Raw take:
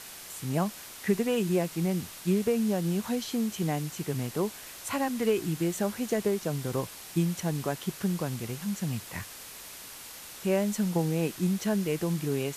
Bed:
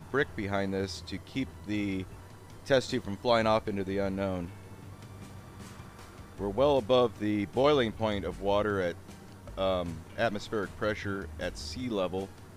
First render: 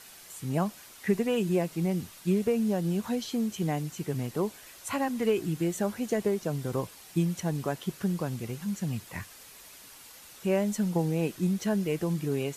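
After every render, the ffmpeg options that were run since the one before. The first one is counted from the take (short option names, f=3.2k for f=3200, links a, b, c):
-af "afftdn=nr=7:nf=-45"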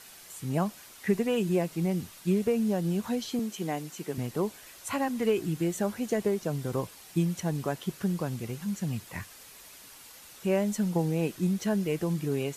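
-filter_complex "[0:a]asettb=1/sr,asplit=3[a][b][c];[a]atrim=end=3.394[d];[b]atrim=start=3.39:end=4.18,asetpts=PTS-STARTPTS,afade=t=in:d=0.004:c=qsin,afade=t=out:st=0.786:d=0.004:c=qsin,highpass=230[e];[c]atrim=start=4.176[f];[d][e]acrossfade=d=0.004:c1=hsin:c2=qsin[g];[g][f]acrossfade=d=0.004:c1=qsin:c2=hsin"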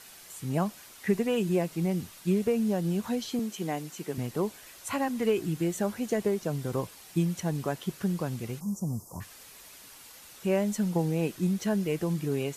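-filter_complex "[0:a]asplit=3[a][b][c];[a]afade=t=out:st=8.59:d=0.02[d];[b]asuperstop=centerf=2500:order=12:qfactor=0.6,afade=t=in:st=8.59:d=0.02,afade=t=out:st=9.2:d=0.02[e];[c]afade=t=in:st=9.2:d=0.02[f];[d][e][f]amix=inputs=3:normalize=0"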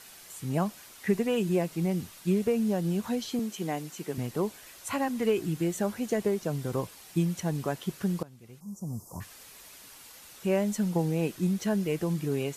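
-filter_complex "[0:a]asplit=2[a][b];[a]atrim=end=8.23,asetpts=PTS-STARTPTS,afade=t=out:st=8.226:d=0.004:c=hsin:silence=0.112202[c];[b]atrim=start=8.23,asetpts=PTS-STARTPTS,afade=t=in:d=0.86:c=qua:silence=0.112202[d];[c][d]concat=n=2:v=0:a=1"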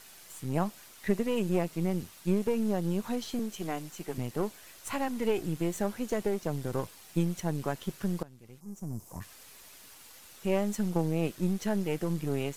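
-af "aeval=exprs='if(lt(val(0),0),0.447*val(0),val(0))':c=same"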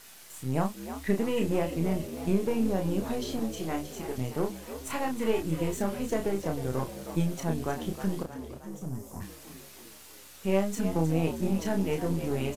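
-filter_complex "[0:a]asplit=2[a][b];[b]adelay=31,volume=-4.5dB[c];[a][c]amix=inputs=2:normalize=0,asplit=2[d][e];[e]asplit=6[f][g][h][i][j][k];[f]adelay=313,afreqshift=71,volume=-11dB[l];[g]adelay=626,afreqshift=142,volume=-16.2dB[m];[h]adelay=939,afreqshift=213,volume=-21.4dB[n];[i]adelay=1252,afreqshift=284,volume=-26.6dB[o];[j]adelay=1565,afreqshift=355,volume=-31.8dB[p];[k]adelay=1878,afreqshift=426,volume=-37dB[q];[l][m][n][o][p][q]amix=inputs=6:normalize=0[r];[d][r]amix=inputs=2:normalize=0"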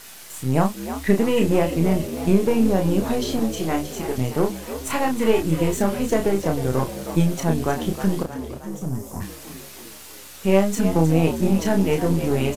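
-af "volume=9dB"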